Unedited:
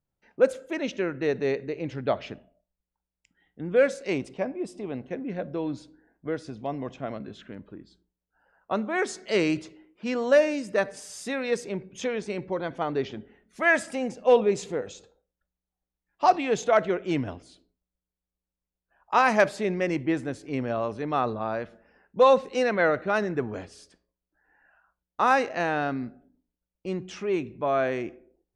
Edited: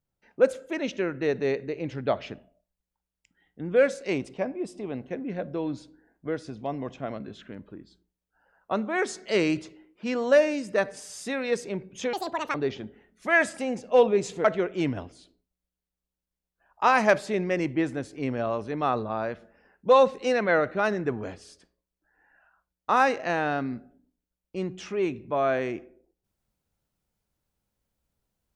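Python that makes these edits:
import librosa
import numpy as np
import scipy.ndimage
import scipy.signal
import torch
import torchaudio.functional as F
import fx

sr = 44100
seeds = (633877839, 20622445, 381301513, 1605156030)

y = fx.edit(x, sr, fx.speed_span(start_s=12.13, length_s=0.75, speed=1.81),
    fx.cut(start_s=14.78, length_s=1.97), tone=tone)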